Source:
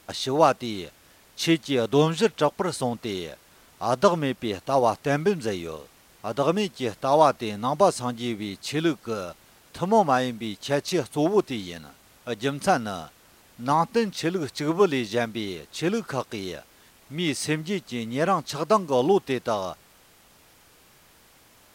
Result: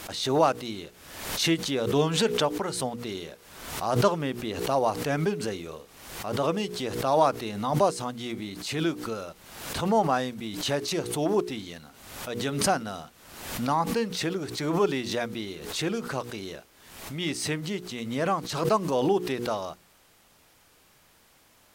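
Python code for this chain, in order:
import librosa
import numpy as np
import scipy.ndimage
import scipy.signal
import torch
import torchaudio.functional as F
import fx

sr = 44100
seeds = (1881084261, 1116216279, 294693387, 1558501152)

y = fx.hum_notches(x, sr, base_hz=60, count=8)
y = fx.pre_swell(y, sr, db_per_s=60.0)
y = y * 10.0 ** (-4.0 / 20.0)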